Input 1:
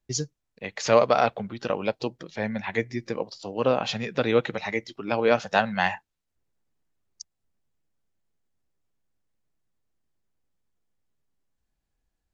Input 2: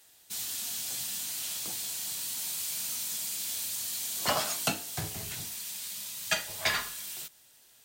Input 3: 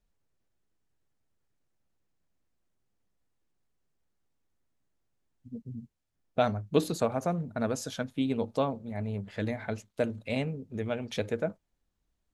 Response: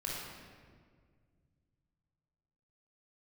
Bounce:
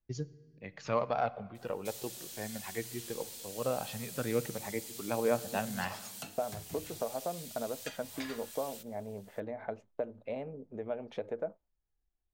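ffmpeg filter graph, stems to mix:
-filter_complex "[0:a]highshelf=f=3.4k:g=-12,aphaser=in_gain=1:out_gain=1:delay=2.8:decay=0.35:speed=0.2:type=sinusoidal,volume=-12dB,asplit=2[a][b];[b]volume=-19dB[c];[1:a]acompressor=threshold=-39dB:ratio=2.5,adelay=1550,volume=-6.5dB[d];[2:a]agate=range=-33dB:threshold=-46dB:ratio=3:detection=peak,acompressor=threshold=-33dB:ratio=6,bandpass=f=640:t=q:w=1.3:csg=0,volume=3dB[e];[3:a]atrim=start_sample=2205[f];[c][f]afir=irnorm=-1:irlink=0[g];[a][d][e][g]amix=inputs=4:normalize=0,lowshelf=f=150:g=4"

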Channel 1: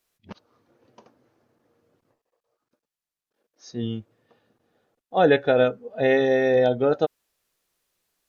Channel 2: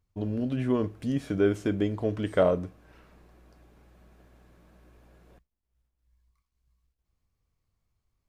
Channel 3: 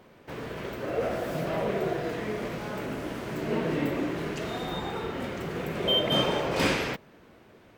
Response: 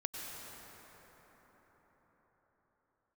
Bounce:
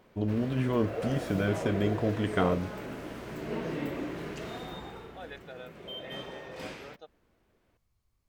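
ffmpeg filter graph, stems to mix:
-filter_complex "[0:a]highpass=f=1.4k:p=1,volume=-11dB[a];[1:a]volume=1.5dB,asplit=2[b][c];[2:a]volume=-6dB,afade=t=out:st=4.53:d=0.66:silence=0.281838[d];[c]apad=whole_len=365263[e];[a][e]sidechaingate=range=-8dB:threshold=-51dB:ratio=16:detection=peak[f];[f][b][d]amix=inputs=3:normalize=0,afftfilt=real='re*lt(hypot(re,im),0.562)':imag='im*lt(hypot(re,im),0.562)':win_size=1024:overlap=0.75"

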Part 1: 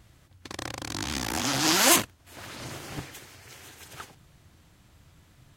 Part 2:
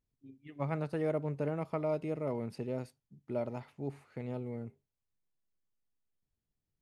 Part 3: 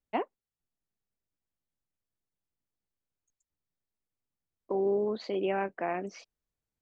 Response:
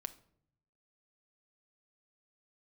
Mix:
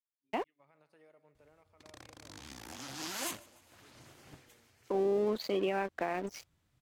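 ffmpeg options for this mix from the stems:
-filter_complex "[0:a]adelay=1350,volume=-18dB,asplit=2[a][b];[b]volume=-23dB[c];[1:a]highpass=f=1.3k:p=1,alimiter=level_in=12dB:limit=-24dB:level=0:latency=1:release=85,volume=-12dB,volume=-17dB,asplit=2[d][e];[e]volume=-15.5dB[f];[2:a]crystalizer=i=2:c=0,aeval=exprs='sgn(val(0))*max(abs(val(0))-0.00447,0)':c=same,adelay=200,volume=3dB[g];[c][f]amix=inputs=2:normalize=0,aecho=0:1:148|296|444|592|740|888|1036|1184:1|0.56|0.314|0.176|0.0983|0.0551|0.0308|0.0173[h];[a][d][g][h]amix=inputs=4:normalize=0,alimiter=limit=-22.5dB:level=0:latency=1:release=212"

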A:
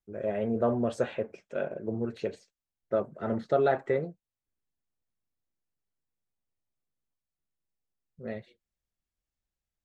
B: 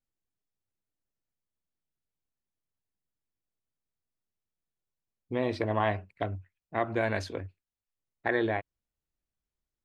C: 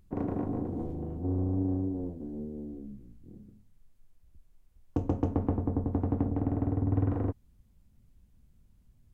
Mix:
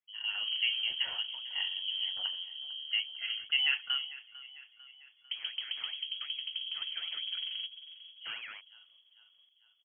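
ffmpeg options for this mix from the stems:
-filter_complex "[0:a]aemphasis=mode=production:type=bsi,volume=-3.5dB,asplit=2[a][b];[b]volume=-17.5dB[c];[1:a]lowpass=f=1.3k:p=1,aeval=exprs='0.0708*(abs(mod(val(0)/0.0708+3,4)-2)-1)':c=same,aeval=exprs='val(0)*sin(2*PI*940*n/s+940*0.6/5.3*sin(2*PI*5.3*n/s))':c=same,volume=-9.5dB[d];[2:a]bandreject=f=970:w=7.1,adelay=350,volume=-1dB,asplit=2[e][f];[f]volume=-22dB[g];[d][e]amix=inputs=2:normalize=0,highpass=140,acompressor=threshold=-46dB:ratio=1.5,volume=0dB[h];[c][g]amix=inputs=2:normalize=0,aecho=0:1:448|896|1344|1792|2240|2688|3136|3584:1|0.54|0.292|0.157|0.085|0.0459|0.0248|0.0134[i];[a][h][i]amix=inputs=3:normalize=0,lowpass=f=2.9k:t=q:w=0.5098,lowpass=f=2.9k:t=q:w=0.6013,lowpass=f=2.9k:t=q:w=0.9,lowpass=f=2.9k:t=q:w=2.563,afreqshift=-3400"

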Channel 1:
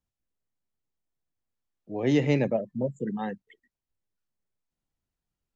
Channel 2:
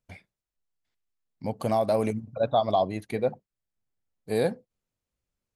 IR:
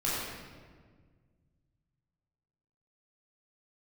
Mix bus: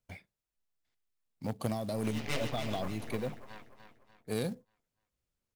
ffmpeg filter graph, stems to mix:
-filter_complex "[0:a]equalizer=f=3.1k:t=o:w=1.9:g=12.5,flanger=delay=17:depth=2.3:speed=0.66,aeval=exprs='0.224*(cos(1*acos(clip(val(0)/0.224,-1,1)))-cos(1*PI/2))+0.0282*(cos(4*acos(clip(val(0)/0.224,-1,1)))-cos(4*PI/2))+0.0251*(cos(7*acos(clip(val(0)/0.224,-1,1)))-cos(7*PI/2))+0.0501*(cos(8*acos(clip(val(0)/0.224,-1,1)))-cos(8*PI/2))':c=same,volume=-9.5dB,asplit=2[a][b];[b]volume=-9.5dB[c];[1:a]acrossover=split=300|3000[d][e][f];[e]acompressor=threshold=-37dB:ratio=4[g];[d][g][f]amix=inputs=3:normalize=0,aeval=exprs='0.106*(cos(1*acos(clip(val(0)/0.106,-1,1)))-cos(1*PI/2))+0.0237*(cos(3*acos(clip(val(0)/0.106,-1,1)))-cos(3*PI/2))+0.0119*(cos(5*acos(clip(val(0)/0.106,-1,1)))-cos(5*PI/2))':c=same,volume=-0.5dB,asplit=2[h][i];[i]apad=whole_len=245145[j];[a][j]sidechaincompress=threshold=-41dB:ratio=10:attack=7.6:release=209[k];[c]aecho=0:1:294|588|882|1176|1470|1764:1|0.43|0.185|0.0795|0.0342|0.0147[l];[k][h][l]amix=inputs=3:normalize=0,acrusher=bits=6:mode=log:mix=0:aa=0.000001"

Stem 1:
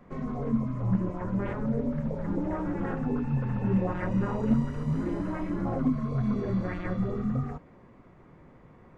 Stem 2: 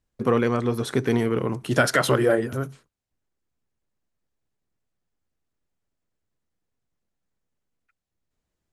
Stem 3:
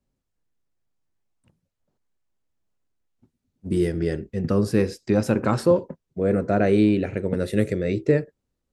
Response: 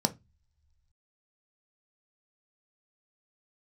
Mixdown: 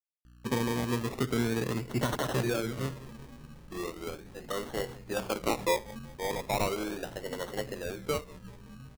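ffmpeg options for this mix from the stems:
-filter_complex "[0:a]equalizer=f=530:t=o:w=2.2:g=-10,adelay=1450,volume=-17dB[a];[1:a]acrossover=split=290|3000[b][c][d];[c]acompressor=threshold=-25dB:ratio=6[e];[b][e][d]amix=inputs=3:normalize=0,aeval=exprs='val(0)+0.00398*(sin(2*PI*60*n/s)+sin(2*PI*2*60*n/s)/2+sin(2*PI*3*60*n/s)/3+sin(2*PI*4*60*n/s)/4+sin(2*PI*5*60*n/s)/5)':c=same,adelay=250,volume=-6dB,asplit=2[f][g];[g]volume=-17dB[h];[2:a]highpass=830,agate=range=-33dB:threshold=-43dB:ratio=3:detection=peak,highshelf=f=4.6k:g=-11,volume=-0.5dB,asplit=2[i][j];[j]volume=-23dB[k];[h][k]amix=inputs=2:normalize=0,aecho=0:1:190|380|570|760|950|1140|1330|1520|1710:1|0.57|0.325|0.185|0.106|0.0602|0.0343|0.0195|0.0111[l];[a][f][i][l]amix=inputs=4:normalize=0,acrusher=samples=25:mix=1:aa=0.000001:lfo=1:lforange=15:lforate=0.37"

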